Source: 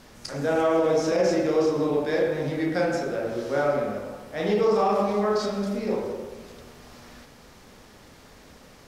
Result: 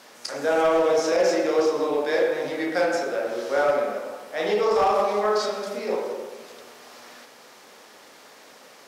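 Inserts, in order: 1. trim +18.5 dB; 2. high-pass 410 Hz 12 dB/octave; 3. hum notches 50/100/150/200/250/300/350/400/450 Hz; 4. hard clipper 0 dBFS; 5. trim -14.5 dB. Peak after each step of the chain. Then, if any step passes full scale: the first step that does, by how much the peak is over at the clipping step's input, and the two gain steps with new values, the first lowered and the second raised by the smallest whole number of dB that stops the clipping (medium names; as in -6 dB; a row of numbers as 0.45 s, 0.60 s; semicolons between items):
+5.0 dBFS, +6.0 dBFS, +6.0 dBFS, 0.0 dBFS, -14.5 dBFS; step 1, 6.0 dB; step 1 +12.5 dB, step 5 -8.5 dB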